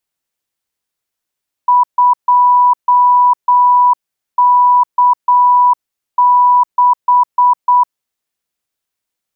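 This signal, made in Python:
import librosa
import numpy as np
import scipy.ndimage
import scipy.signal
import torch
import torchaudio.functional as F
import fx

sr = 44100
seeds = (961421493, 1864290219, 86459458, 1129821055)

y = fx.morse(sr, text='2K6', wpm=8, hz=985.0, level_db=-5.5)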